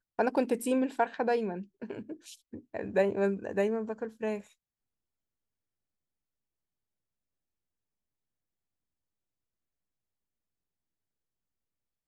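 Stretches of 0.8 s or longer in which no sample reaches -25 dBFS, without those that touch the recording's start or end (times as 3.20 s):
1.44–2.77 s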